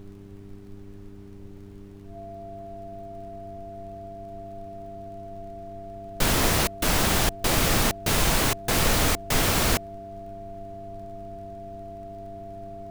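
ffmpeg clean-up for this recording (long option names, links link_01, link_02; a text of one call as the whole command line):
ffmpeg -i in.wav -af "adeclick=threshold=4,bandreject=frequency=99.5:width_type=h:width=4,bandreject=frequency=199:width_type=h:width=4,bandreject=frequency=298.5:width_type=h:width=4,bandreject=frequency=398:width_type=h:width=4,bandreject=frequency=680:width=30,afftdn=noise_reduction=28:noise_floor=-42" out.wav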